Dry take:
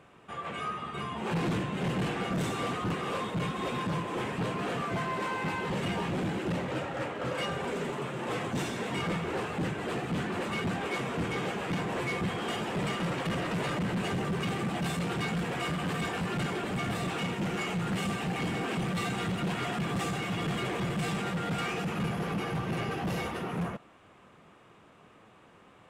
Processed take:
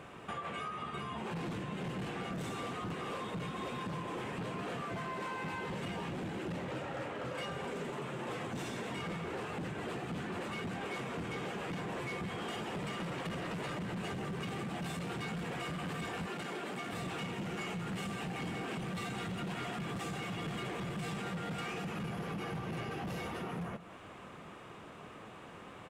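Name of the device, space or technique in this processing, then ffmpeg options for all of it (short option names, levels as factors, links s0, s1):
serial compression, leveller first: -filter_complex "[0:a]asettb=1/sr,asplit=3[s0][s1][s2];[s0]atrim=end=16.264[s3];[s1]atrim=start=16.26:end=16.93,asetpts=PTS-STARTPTS,afade=t=in:d=0.004:c=qsin,afade=t=out:st=0.666:d=0.004:c=qsin,highpass=240[s4];[s2]atrim=start=16.926[s5];[s3][s4]acrossfade=d=0.004:c1=hsin:c2=qsin[s6];[s6][s5]acrossfade=d=0.004:c1=qsin:c2=hsin,acompressor=threshold=0.0224:ratio=6,acompressor=threshold=0.00562:ratio=6,aecho=1:1:190:0.178,volume=2.11"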